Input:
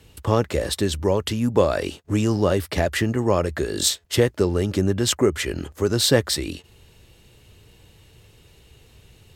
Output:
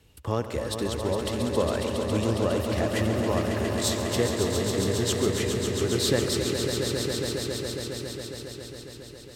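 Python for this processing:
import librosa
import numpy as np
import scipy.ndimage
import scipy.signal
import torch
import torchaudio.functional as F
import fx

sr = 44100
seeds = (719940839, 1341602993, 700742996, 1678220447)

y = fx.vibrato(x, sr, rate_hz=14.0, depth_cents=7.0)
y = fx.echo_swell(y, sr, ms=137, loudest=5, wet_db=-8.0)
y = fx.echo_warbled(y, sr, ms=90, feedback_pct=79, rate_hz=2.8, cents=158, wet_db=-16.5)
y = y * librosa.db_to_amplitude(-8.0)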